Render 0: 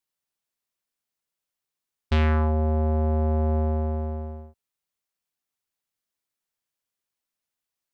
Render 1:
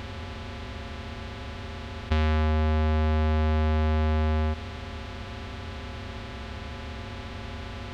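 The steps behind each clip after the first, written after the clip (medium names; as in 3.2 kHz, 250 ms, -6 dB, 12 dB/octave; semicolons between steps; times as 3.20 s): spectral levelling over time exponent 0.2; compression, threshold -22 dBFS, peak gain reduction 4.5 dB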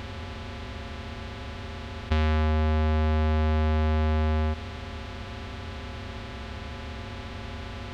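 no audible change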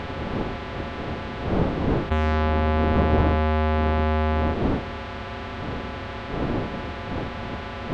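wind noise 250 Hz -32 dBFS; overdrive pedal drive 10 dB, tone 1.2 kHz, clips at -12 dBFS; trim +6 dB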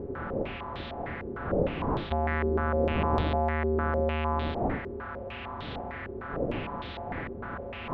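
step-sequenced low-pass 6.6 Hz 400–3700 Hz; trim -8.5 dB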